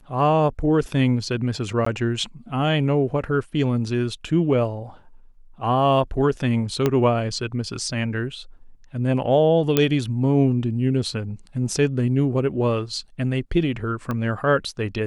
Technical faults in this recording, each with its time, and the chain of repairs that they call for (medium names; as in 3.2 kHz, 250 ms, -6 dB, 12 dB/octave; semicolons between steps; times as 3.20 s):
1.85–1.86 s: dropout 14 ms
6.86 s: pop -7 dBFS
9.77 s: pop -3 dBFS
14.11 s: pop -15 dBFS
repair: de-click; interpolate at 1.85 s, 14 ms